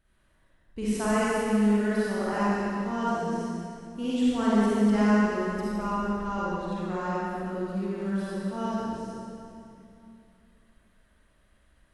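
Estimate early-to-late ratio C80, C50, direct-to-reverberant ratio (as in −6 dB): −3.5 dB, −6.5 dB, −9.0 dB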